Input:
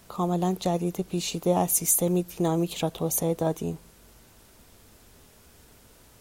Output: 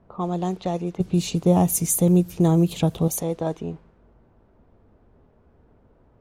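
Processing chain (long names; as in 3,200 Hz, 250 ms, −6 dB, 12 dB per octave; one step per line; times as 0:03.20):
0:01.00–0:03.08: parametric band 110 Hz +13 dB 2.5 octaves
low-pass that shuts in the quiet parts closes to 830 Hz, open at −18 dBFS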